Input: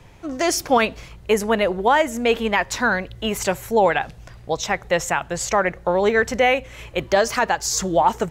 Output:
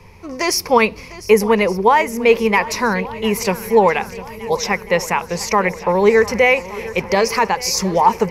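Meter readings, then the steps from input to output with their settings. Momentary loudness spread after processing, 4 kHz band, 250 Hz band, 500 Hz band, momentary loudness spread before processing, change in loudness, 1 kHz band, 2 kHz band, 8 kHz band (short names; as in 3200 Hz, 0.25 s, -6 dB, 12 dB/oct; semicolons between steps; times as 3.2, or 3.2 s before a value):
9 LU, +3.0 dB, +4.5 dB, +4.5 dB, 7 LU, +4.0 dB, +4.0 dB, +3.0 dB, +1.5 dB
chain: ripple EQ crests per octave 0.85, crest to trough 11 dB; on a send: swung echo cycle 1.169 s, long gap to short 1.5:1, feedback 58%, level -17.5 dB; on the sum: gain +2 dB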